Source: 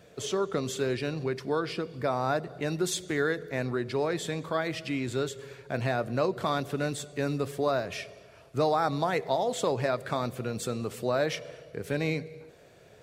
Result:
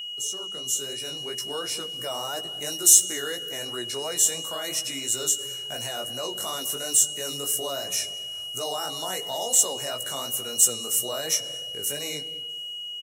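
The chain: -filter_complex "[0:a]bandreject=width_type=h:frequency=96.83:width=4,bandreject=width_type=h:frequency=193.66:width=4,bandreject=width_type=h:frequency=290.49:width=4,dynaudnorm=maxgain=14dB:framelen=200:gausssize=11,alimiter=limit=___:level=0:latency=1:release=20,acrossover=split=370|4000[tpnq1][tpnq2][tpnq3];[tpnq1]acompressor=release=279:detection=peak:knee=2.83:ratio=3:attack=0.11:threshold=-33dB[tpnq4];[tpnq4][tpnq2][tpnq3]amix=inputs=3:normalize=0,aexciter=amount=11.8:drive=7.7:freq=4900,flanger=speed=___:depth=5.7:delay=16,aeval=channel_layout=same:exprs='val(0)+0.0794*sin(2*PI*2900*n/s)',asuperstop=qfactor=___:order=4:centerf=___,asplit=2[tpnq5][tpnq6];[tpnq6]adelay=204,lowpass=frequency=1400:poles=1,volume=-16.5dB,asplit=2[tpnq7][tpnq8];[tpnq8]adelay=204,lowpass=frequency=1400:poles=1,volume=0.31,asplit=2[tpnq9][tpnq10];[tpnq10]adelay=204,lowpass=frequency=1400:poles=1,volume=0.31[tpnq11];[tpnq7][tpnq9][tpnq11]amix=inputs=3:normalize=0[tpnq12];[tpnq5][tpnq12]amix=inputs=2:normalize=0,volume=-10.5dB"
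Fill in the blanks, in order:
-9dB, 2.9, 5.2, 4700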